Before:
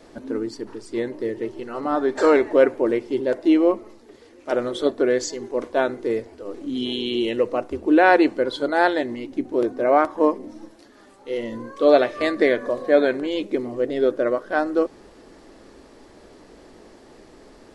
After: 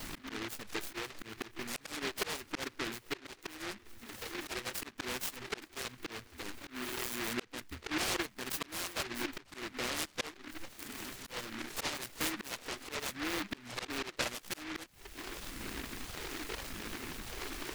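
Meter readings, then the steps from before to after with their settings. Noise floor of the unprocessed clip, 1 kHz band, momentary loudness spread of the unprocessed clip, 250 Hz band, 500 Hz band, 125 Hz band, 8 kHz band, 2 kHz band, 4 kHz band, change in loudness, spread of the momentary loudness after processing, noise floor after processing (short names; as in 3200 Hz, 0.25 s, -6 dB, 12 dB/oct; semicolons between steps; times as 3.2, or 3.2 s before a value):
-50 dBFS, -18.5 dB, 13 LU, -20.5 dB, -25.5 dB, -7.5 dB, n/a, -11.5 dB, -5.0 dB, -18.0 dB, 9 LU, -60 dBFS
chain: reverb removal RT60 0.55 s; high shelf 3700 Hz +7.5 dB; auto swell 0.791 s; compressor 3:1, threshold -46 dBFS, peak gain reduction 20.5 dB; phaser stages 12, 0.84 Hz, lowest notch 160–1000 Hz; noise-modulated delay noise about 1700 Hz, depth 0.43 ms; gain +10.5 dB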